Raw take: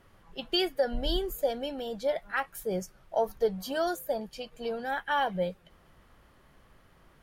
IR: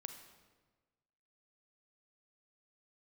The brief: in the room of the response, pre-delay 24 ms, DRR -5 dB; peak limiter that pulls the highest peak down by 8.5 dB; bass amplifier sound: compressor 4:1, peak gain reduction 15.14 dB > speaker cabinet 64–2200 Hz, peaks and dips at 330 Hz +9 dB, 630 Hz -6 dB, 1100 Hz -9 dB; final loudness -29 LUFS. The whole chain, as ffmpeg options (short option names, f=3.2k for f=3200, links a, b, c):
-filter_complex "[0:a]alimiter=limit=-24dB:level=0:latency=1,asplit=2[a][b];[1:a]atrim=start_sample=2205,adelay=24[c];[b][c]afir=irnorm=-1:irlink=0,volume=9dB[d];[a][d]amix=inputs=2:normalize=0,acompressor=threshold=-39dB:ratio=4,highpass=f=64:w=0.5412,highpass=f=64:w=1.3066,equalizer=f=330:t=q:w=4:g=9,equalizer=f=630:t=q:w=4:g=-6,equalizer=f=1.1k:t=q:w=4:g=-9,lowpass=f=2.2k:w=0.5412,lowpass=f=2.2k:w=1.3066,volume=12.5dB"